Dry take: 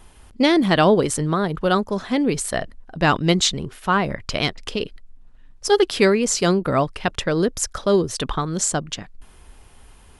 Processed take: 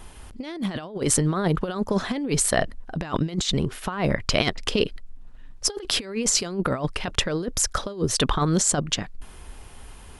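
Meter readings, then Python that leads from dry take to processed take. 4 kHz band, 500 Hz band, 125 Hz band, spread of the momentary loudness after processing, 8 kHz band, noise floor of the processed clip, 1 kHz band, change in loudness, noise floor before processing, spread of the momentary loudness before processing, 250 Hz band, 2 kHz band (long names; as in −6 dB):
−1.5 dB, −7.5 dB, −1.5 dB, 9 LU, +1.5 dB, −43 dBFS, −7.5 dB, −4.0 dB, −48 dBFS, 12 LU, −5.5 dB, −5.5 dB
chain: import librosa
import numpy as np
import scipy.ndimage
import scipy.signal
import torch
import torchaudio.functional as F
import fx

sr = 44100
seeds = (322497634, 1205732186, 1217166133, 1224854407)

y = fx.over_compress(x, sr, threshold_db=-23.0, ratio=-0.5)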